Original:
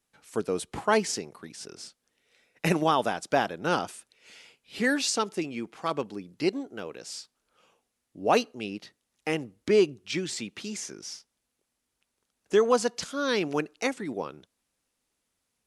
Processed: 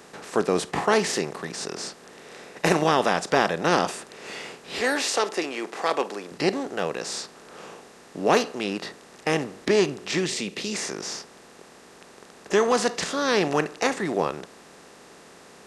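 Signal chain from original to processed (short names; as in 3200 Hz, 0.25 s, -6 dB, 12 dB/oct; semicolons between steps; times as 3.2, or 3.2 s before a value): per-bin compression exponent 0.4; 4.8–6.32 HPF 280 Hz 12 dB/oct; spectral noise reduction 7 dB; 10.26–10.74 band shelf 1100 Hz -8.5 dB; gain -2 dB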